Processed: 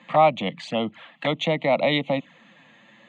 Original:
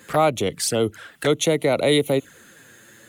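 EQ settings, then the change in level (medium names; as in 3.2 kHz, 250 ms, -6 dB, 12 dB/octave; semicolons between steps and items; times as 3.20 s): Chebyshev band-pass 180–5900 Hz, order 3; distance through air 150 m; static phaser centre 1.5 kHz, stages 6; +5.0 dB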